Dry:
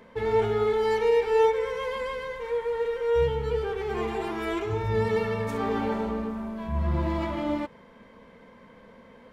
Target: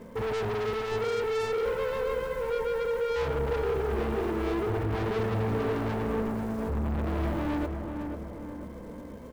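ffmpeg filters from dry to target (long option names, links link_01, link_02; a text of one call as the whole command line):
ffmpeg -i in.wav -filter_complex "[0:a]lowpass=4200,tiltshelf=frequency=790:gain=7.5,bandreject=frequency=780:width=12,asoftclip=type=tanh:threshold=-27dB,acrusher=bits=5:mode=log:mix=0:aa=0.000001,asoftclip=type=hard:threshold=-31.5dB,asplit=2[link_01][link_02];[link_02]adelay=491,lowpass=frequency=1700:poles=1,volume=-5.5dB,asplit=2[link_03][link_04];[link_04]adelay=491,lowpass=frequency=1700:poles=1,volume=0.53,asplit=2[link_05][link_06];[link_06]adelay=491,lowpass=frequency=1700:poles=1,volume=0.53,asplit=2[link_07][link_08];[link_08]adelay=491,lowpass=frequency=1700:poles=1,volume=0.53,asplit=2[link_09][link_10];[link_10]adelay=491,lowpass=frequency=1700:poles=1,volume=0.53,asplit=2[link_11][link_12];[link_12]adelay=491,lowpass=frequency=1700:poles=1,volume=0.53,asplit=2[link_13][link_14];[link_14]adelay=491,lowpass=frequency=1700:poles=1,volume=0.53[link_15];[link_01][link_03][link_05][link_07][link_09][link_11][link_13][link_15]amix=inputs=8:normalize=0,volume=2.5dB" out.wav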